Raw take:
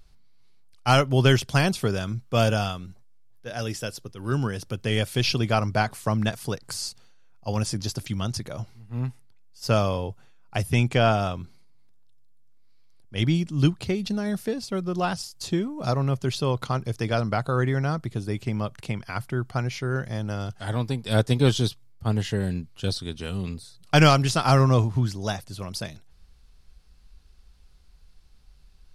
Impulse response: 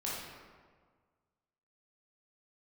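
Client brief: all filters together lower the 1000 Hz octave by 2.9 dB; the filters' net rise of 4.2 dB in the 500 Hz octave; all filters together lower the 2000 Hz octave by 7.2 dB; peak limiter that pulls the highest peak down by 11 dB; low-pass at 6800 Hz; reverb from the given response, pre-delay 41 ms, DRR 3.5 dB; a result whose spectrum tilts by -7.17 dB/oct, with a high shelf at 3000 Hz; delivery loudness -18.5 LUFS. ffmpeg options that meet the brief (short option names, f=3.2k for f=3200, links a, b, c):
-filter_complex "[0:a]lowpass=6.8k,equalizer=f=500:t=o:g=7.5,equalizer=f=1k:t=o:g=-6,equalizer=f=2k:t=o:g=-6,highshelf=f=3k:g=-6,alimiter=limit=-15dB:level=0:latency=1,asplit=2[a][b];[1:a]atrim=start_sample=2205,adelay=41[c];[b][c]afir=irnorm=-1:irlink=0,volume=-7dB[d];[a][d]amix=inputs=2:normalize=0,volume=8dB"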